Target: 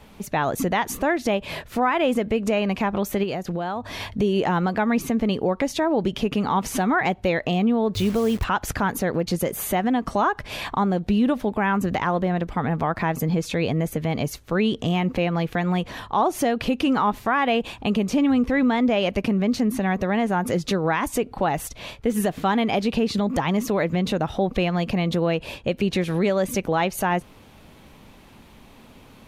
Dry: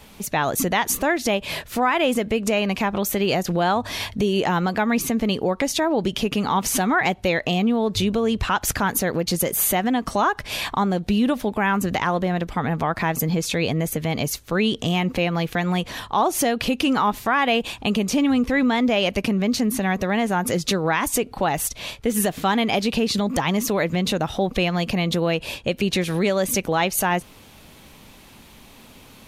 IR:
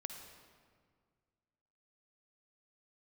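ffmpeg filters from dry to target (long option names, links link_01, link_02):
-filter_complex "[0:a]highshelf=frequency=2900:gain=-10,asettb=1/sr,asplit=3[link_01][link_02][link_03];[link_01]atrim=end=3.234[link_04];[link_02]atrim=start=3.23:end=4.04,asetpts=PTS-STARTPTS,afade=type=in:duration=0.004:curve=qsin,afade=type=out:start_time=0.806:duration=0.004:curve=qsin,acompressor=threshold=-24dB:ratio=6[link_05];[link_03]atrim=start=4.036[link_06];[link_04][link_05]acrossfade=duration=0.004:curve1=hsin:curve2=qsin[link_07];[link_07][link_06]acrossfade=duration=0.004:curve1=qsin:curve2=hsin,asettb=1/sr,asplit=3[link_08][link_09][link_10];[link_08]atrim=end=7.944[link_11];[link_09]atrim=start=7.94:end=8.45,asetpts=PTS-STARTPTS,afade=type=in:duration=0.004:curve=qsin,afade=type=out:start_time=0.506:duration=0.004:curve=qsin,acrusher=bits=7:dc=4:mix=0:aa=0.000001[link_12];[link_10]atrim=start=8.446[link_13];[link_11][link_12]acrossfade=duration=0.004:curve1=hsin:curve2=qsin[link_14];[link_14][link_13]acrossfade=duration=0.004:curve1=qsin:curve2=hsin"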